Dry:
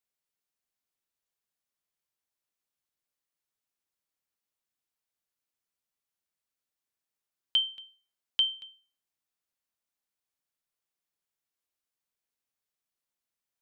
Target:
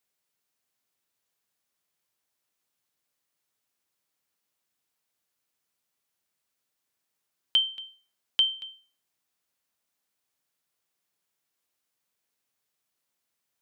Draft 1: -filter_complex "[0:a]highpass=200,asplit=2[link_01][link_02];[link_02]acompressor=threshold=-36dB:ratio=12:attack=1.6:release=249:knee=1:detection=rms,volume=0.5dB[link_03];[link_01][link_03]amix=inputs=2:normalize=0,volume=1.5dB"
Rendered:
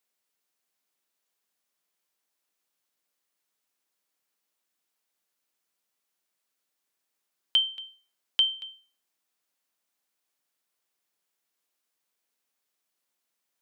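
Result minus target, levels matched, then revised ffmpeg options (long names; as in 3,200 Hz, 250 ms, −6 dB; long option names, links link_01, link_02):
125 Hz band −8.5 dB
-filter_complex "[0:a]highpass=76,asplit=2[link_01][link_02];[link_02]acompressor=threshold=-36dB:ratio=12:attack=1.6:release=249:knee=1:detection=rms,volume=0.5dB[link_03];[link_01][link_03]amix=inputs=2:normalize=0,volume=1.5dB"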